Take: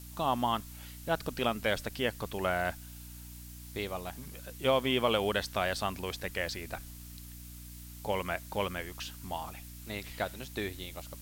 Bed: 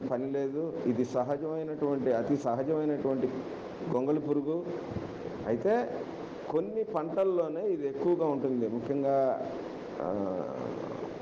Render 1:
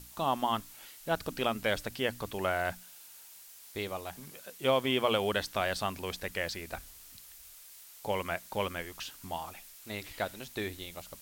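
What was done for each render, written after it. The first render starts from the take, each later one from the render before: hum notches 60/120/180/240/300 Hz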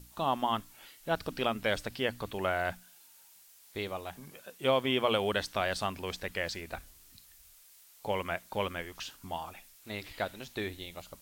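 noise print and reduce 6 dB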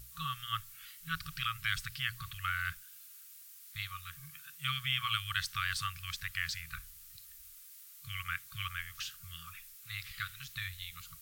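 treble shelf 12 kHz +9 dB; FFT band-reject 170–1100 Hz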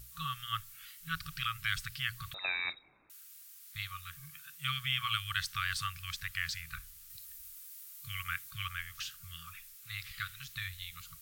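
2.34–3.10 s: frequency inversion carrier 3.8 kHz; 7.10–8.51 s: treble shelf 8 kHz +5 dB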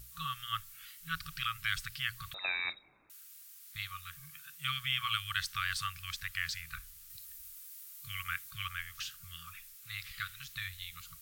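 de-hum 197.6 Hz, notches 3; dynamic bell 120 Hz, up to -4 dB, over -57 dBFS, Q 1.2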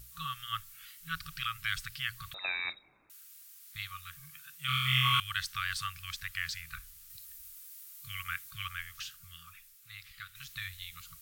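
4.66–5.20 s: flutter echo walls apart 4 m, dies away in 1.4 s; 8.85–10.35 s: fade out quadratic, to -7 dB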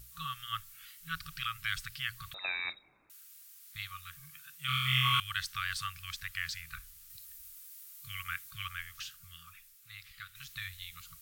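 trim -1 dB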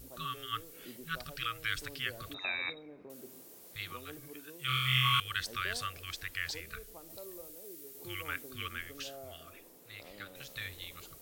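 add bed -21.5 dB

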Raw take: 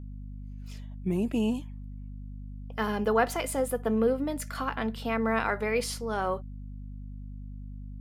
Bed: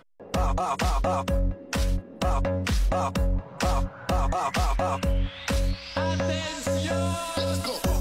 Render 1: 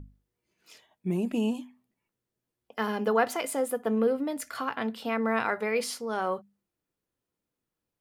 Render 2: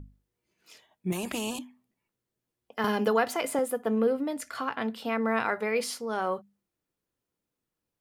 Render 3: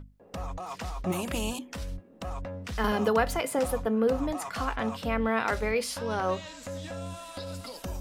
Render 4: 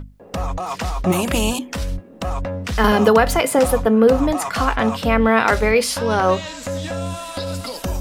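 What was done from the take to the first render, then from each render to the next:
hum notches 50/100/150/200/250 Hz
1.12–1.59 s: spectrum-flattening compressor 2:1; 2.84–3.59 s: three bands compressed up and down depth 70%; 4.37–4.79 s: Bessel low-pass 11 kHz
add bed -11.5 dB
trim +12 dB; peak limiter -2 dBFS, peak gain reduction 3 dB

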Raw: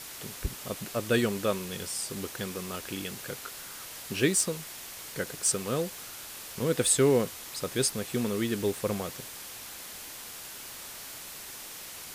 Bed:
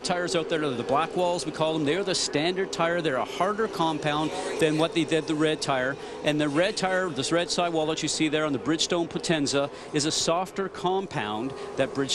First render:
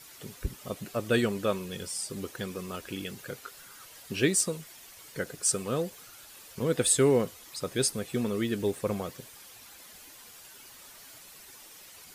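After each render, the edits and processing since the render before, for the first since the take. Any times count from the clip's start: noise reduction 10 dB, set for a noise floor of -43 dBFS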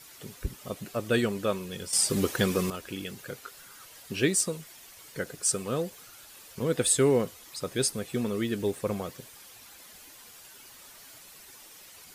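1.93–2.70 s: gain +10.5 dB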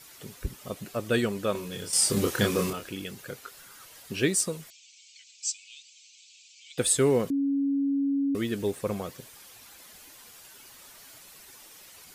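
1.52–2.89 s: doubling 29 ms -3.5 dB; 4.70–6.78 s: Chebyshev band-pass 2.3–7.7 kHz, order 5; 7.30–8.35 s: bleep 278 Hz -23 dBFS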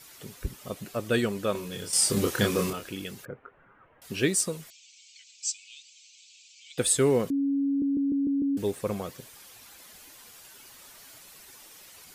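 3.25–4.02 s: Gaussian low-pass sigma 5.2 samples; 7.67 s: stutter in place 0.15 s, 6 plays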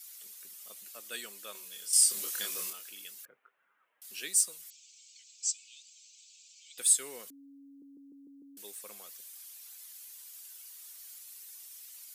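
high-pass 150 Hz 24 dB/octave; differentiator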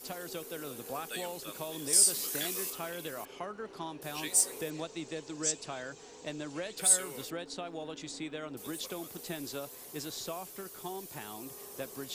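add bed -15.5 dB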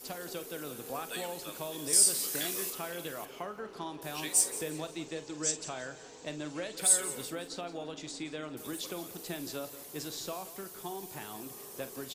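doubling 46 ms -12.5 dB; feedback delay 174 ms, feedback 33%, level -15 dB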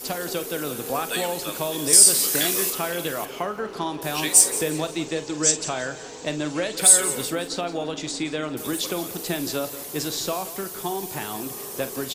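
trim +12 dB; peak limiter -1 dBFS, peak gain reduction 2 dB

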